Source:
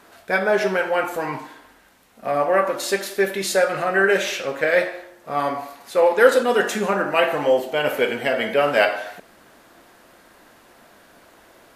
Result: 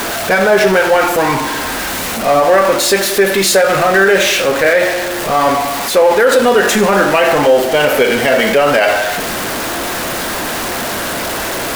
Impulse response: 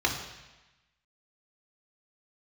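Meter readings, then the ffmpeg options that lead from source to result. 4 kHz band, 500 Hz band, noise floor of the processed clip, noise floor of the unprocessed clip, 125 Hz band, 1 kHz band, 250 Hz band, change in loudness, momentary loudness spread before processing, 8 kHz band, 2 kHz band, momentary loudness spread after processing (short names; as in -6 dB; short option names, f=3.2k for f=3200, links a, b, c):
+13.0 dB, +8.5 dB, -20 dBFS, -52 dBFS, +12.5 dB, +10.0 dB, +11.5 dB, +8.0 dB, 11 LU, +16.0 dB, +9.0 dB, 8 LU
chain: -af "aeval=exprs='val(0)+0.5*0.0708*sgn(val(0))':c=same,alimiter=level_in=10dB:limit=-1dB:release=50:level=0:latency=1,volume=-1dB"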